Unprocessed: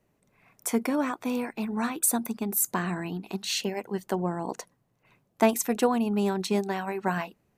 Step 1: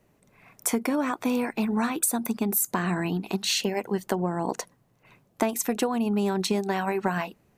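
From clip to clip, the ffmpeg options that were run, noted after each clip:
-af "acompressor=threshold=-28dB:ratio=10,volume=6.5dB"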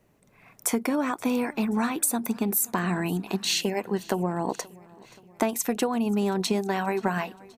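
-af "aecho=1:1:528|1056|1584|2112:0.0668|0.0388|0.0225|0.013"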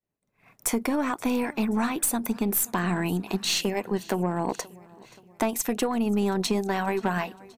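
-af "aeval=exprs='0.355*(cos(1*acos(clip(val(0)/0.355,-1,1)))-cos(1*PI/2))+0.0316*(cos(5*acos(clip(val(0)/0.355,-1,1)))-cos(5*PI/2))+0.0224*(cos(6*acos(clip(val(0)/0.355,-1,1)))-cos(6*PI/2))':c=same,agate=range=-33dB:threshold=-46dB:ratio=3:detection=peak,volume=-2.5dB"

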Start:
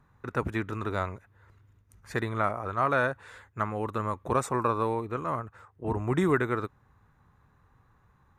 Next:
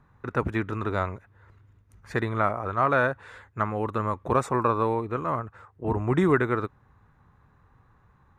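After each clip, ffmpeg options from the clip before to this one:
-af "highshelf=f=5.6k:g=-10.5,volume=3.5dB"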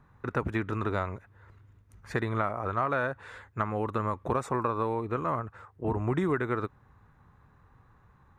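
-af "acompressor=threshold=-25dB:ratio=4"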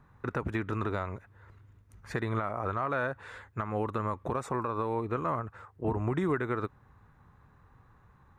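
-af "alimiter=limit=-19.5dB:level=0:latency=1:release=153"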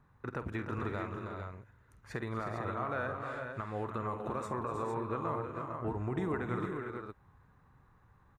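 -af "aecho=1:1:49|243|314|357|420|453:0.224|0.178|0.398|0.251|0.237|0.473,volume=-6dB"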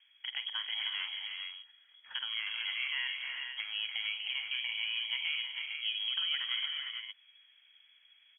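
-af "lowpass=f=2.9k:t=q:w=0.5098,lowpass=f=2.9k:t=q:w=0.6013,lowpass=f=2.9k:t=q:w=0.9,lowpass=f=2.9k:t=q:w=2.563,afreqshift=-3400"

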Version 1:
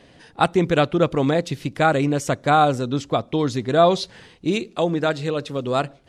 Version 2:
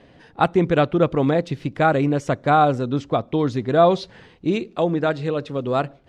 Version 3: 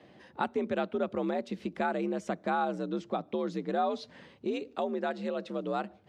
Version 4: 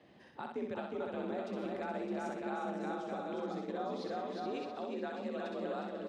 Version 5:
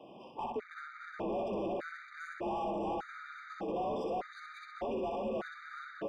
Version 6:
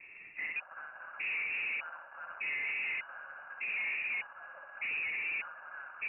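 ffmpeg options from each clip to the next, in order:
-af "aemphasis=mode=reproduction:type=75fm"
-af "acompressor=threshold=-27dB:ratio=2,afreqshift=60,volume=-6dB"
-filter_complex "[0:a]asplit=2[a][b];[b]aecho=0:1:360|612|788.4|911.9|998.3:0.631|0.398|0.251|0.158|0.1[c];[a][c]amix=inputs=2:normalize=0,alimiter=level_in=0.5dB:limit=-24dB:level=0:latency=1:release=200,volume=-0.5dB,asplit=2[d][e];[e]aecho=0:1:63|126|189|252:0.631|0.208|0.0687|0.0227[f];[d][f]amix=inputs=2:normalize=0,volume=-6dB"
-filter_complex "[0:a]asplit=2[a][b];[b]highpass=f=720:p=1,volume=22dB,asoftclip=type=tanh:threshold=-27dB[c];[a][c]amix=inputs=2:normalize=0,lowpass=f=1.2k:p=1,volume=-6dB,bandreject=f=4.1k:w=14,afftfilt=real='re*gt(sin(2*PI*0.83*pts/sr)*(1-2*mod(floor(b*sr/1024/1200),2)),0)':imag='im*gt(sin(2*PI*0.83*pts/sr)*(1-2*mod(floor(b*sr/1024/1200),2)),0)':win_size=1024:overlap=0.75"
-af "aresample=16000,acrusher=bits=2:mode=log:mix=0:aa=0.000001,aresample=44100,asoftclip=type=hard:threshold=-32.5dB,lowpass=f=2.5k:t=q:w=0.5098,lowpass=f=2.5k:t=q:w=0.6013,lowpass=f=2.5k:t=q:w=0.9,lowpass=f=2.5k:t=q:w=2.563,afreqshift=-2900"

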